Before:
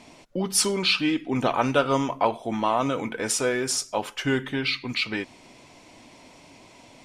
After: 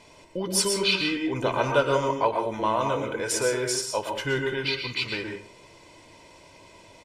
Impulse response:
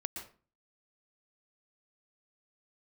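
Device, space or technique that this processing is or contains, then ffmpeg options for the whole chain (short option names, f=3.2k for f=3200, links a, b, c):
microphone above a desk: -filter_complex "[0:a]aecho=1:1:2:0.59[a];[1:a]atrim=start_sample=2205[b];[a][b]afir=irnorm=-1:irlink=0,volume=-1.5dB"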